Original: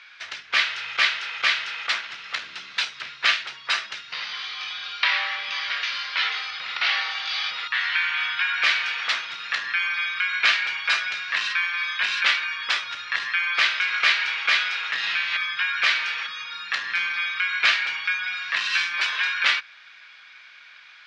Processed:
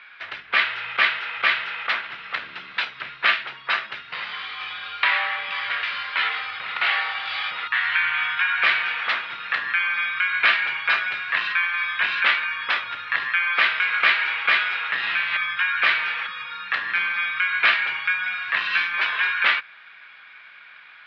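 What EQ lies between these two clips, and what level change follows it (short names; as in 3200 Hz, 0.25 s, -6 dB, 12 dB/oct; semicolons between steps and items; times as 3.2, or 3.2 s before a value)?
air absorption 420 m; +6.5 dB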